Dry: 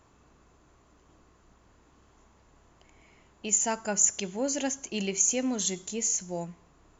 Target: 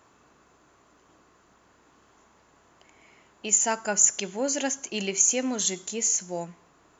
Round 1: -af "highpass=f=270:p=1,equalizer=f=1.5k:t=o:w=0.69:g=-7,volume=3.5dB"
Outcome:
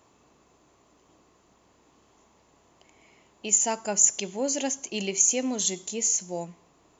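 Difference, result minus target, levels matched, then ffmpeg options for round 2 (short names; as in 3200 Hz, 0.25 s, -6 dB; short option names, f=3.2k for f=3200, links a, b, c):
2000 Hz band -4.0 dB
-af "highpass=f=270:p=1,equalizer=f=1.5k:t=o:w=0.69:g=2.5,volume=3.5dB"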